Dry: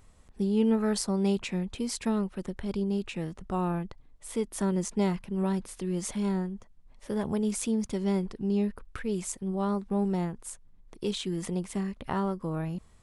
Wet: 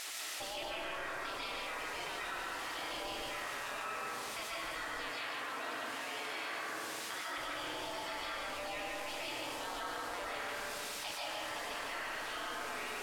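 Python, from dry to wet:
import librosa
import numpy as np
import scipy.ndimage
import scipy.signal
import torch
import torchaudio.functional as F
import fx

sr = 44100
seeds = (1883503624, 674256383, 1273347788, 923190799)

y = fx.spec_gate(x, sr, threshold_db=-30, keep='weak')
y = fx.dmg_noise_colour(y, sr, seeds[0], colour='violet', level_db=-45.0)
y = scipy.signal.sosfilt(scipy.signal.butter(2, 7500.0, 'lowpass', fs=sr, output='sos'), y)
y = fx.bass_treble(y, sr, bass_db=-10, treble_db=-12)
y = y + 10.0 ** (-3.0 / 20.0) * np.pad(y, (int(145 * sr / 1000.0), 0))[:len(y)]
y = fx.rev_freeverb(y, sr, rt60_s=1.6, hf_ratio=0.35, predelay_ms=105, drr_db=-7.0)
y = fx.rider(y, sr, range_db=10, speed_s=0.5)
y = fx.highpass(y, sr, hz=130.0, slope=12, at=(5.11, 7.38))
y = fx.env_flatten(y, sr, amount_pct=70)
y = F.gain(torch.from_numpy(y), 3.0).numpy()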